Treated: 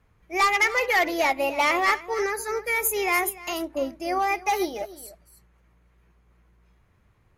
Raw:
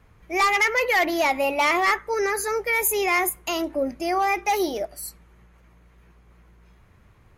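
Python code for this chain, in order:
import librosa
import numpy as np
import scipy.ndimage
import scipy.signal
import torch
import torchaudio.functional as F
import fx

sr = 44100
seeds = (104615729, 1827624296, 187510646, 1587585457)

p1 = x + fx.echo_single(x, sr, ms=293, db=-13.0, dry=0)
y = fx.upward_expand(p1, sr, threshold_db=-33.0, expansion=1.5)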